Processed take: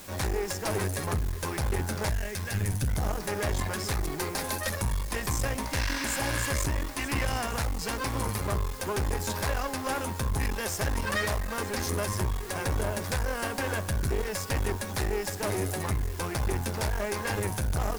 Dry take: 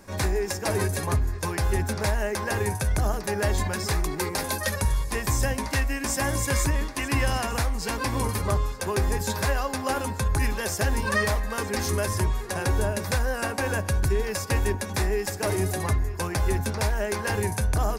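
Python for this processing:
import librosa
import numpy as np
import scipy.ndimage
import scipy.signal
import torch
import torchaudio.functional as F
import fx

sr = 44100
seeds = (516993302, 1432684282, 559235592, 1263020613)

p1 = fx.graphic_eq(x, sr, hz=(125, 250, 500, 1000), db=(11, -10, -6, -11), at=(2.09, 2.88))
p2 = fx.spec_repair(p1, sr, seeds[0], start_s=5.79, length_s=0.67, low_hz=890.0, high_hz=6300.0, source='both')
p3 = fx.quant_dither(p2, sr, seeds[1], bits=6, dither='triangular')
p4 = p2 + (p3 * 10.0 ** (-7.0 / 20.0))
p5 = fx.clip_asym(p4, sr, top_db=-31.0, bottom_db=-15.0)
y = p5 * 10.0 ** (-4.0 / 20.0)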